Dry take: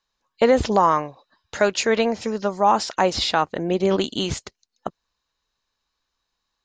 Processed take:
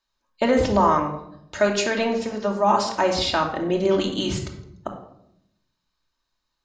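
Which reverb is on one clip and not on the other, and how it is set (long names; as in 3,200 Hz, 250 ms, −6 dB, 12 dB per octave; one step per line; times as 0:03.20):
rectangular room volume 1,900 cubic metres, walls furnished, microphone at 2.7 metres
level −3.5 dB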